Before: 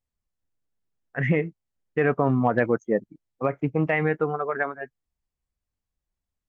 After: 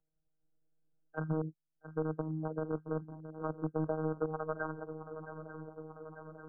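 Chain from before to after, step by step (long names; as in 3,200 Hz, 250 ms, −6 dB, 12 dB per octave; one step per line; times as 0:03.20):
adaptive Wiener filter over 41 samples
treble cut that deepens with the level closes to 320 Hz, closed at −18.5 dBFS
low-shelf EQ 240 Hz −10 dB
reversed playback
downward compressor 8 to 1, threshold −32 dBFS, peak gain reduction 11 dB
reversed playback
phases set to zero 157 Hz
in parallel at −8 dB: bit reduction 5 bits
on the sum: linear-phase brick-wall low-pass 1,600 Hz
feedback echo with a long and a short gap by turns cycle 893 ms, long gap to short 3 to 1, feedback 55%, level −16.5 dB
multiband upward and downward compressor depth 40%
level +1 dB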